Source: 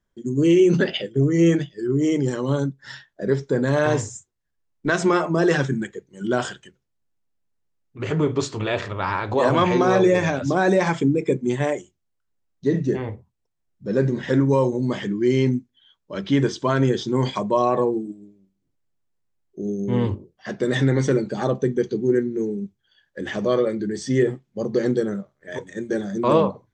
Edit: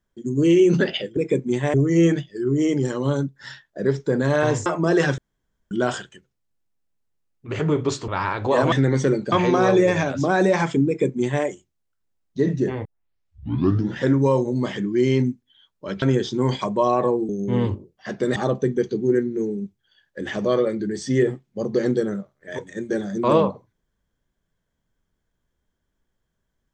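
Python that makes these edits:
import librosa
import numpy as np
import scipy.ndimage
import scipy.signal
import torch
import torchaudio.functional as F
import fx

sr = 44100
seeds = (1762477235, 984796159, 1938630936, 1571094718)

y = fx.edit(x, sr, fx.cut(start_s=4.09, length_s=1.08),
    fx.room_tone_fill(start_s=5.69, length_s=0.53),
    fx.cut(start_s=8.59, length_s=0.36),
    fx.duplicate(start_s=11.14, length_s=0.57, to_s=1.17),
    fx.tape_start(start_s=13.12, length_s=1.16),
    fx.cut(start_s=16.29, length_s=0.47),
    fx.cut(start_s=18.03, length_s=1.66),
    fx.move(start_s=20.76, length_s=0.6, to_s=9.59), tone=tone)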